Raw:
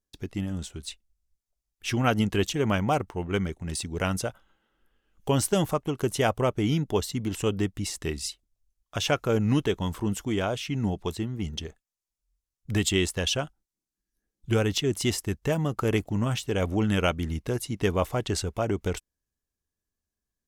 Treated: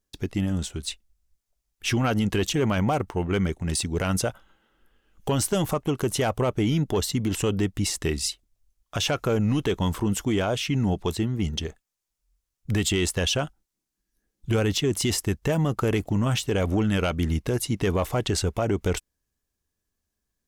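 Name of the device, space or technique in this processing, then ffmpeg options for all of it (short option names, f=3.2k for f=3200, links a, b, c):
soft clipper into limiter: -af "asoftclip=type=tanh:threshold=-14.5dB,alimiter=limit=-22dB:level=0:latency=1:release=42,volume=6dB"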